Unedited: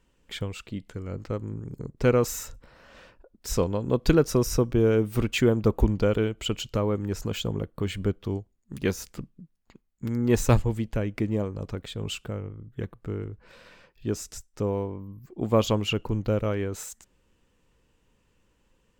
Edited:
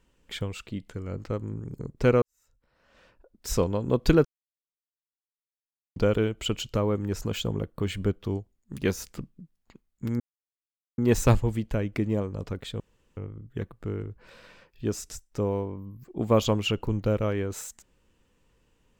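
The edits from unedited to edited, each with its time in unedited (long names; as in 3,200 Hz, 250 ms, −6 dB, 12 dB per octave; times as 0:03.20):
0:02.22–0:03.48: fade in quadratic
0:04.25–0:05.96: silence
0:10.20: splice in silence 0.78 s
0:12.02–0:12.39: fill with room tone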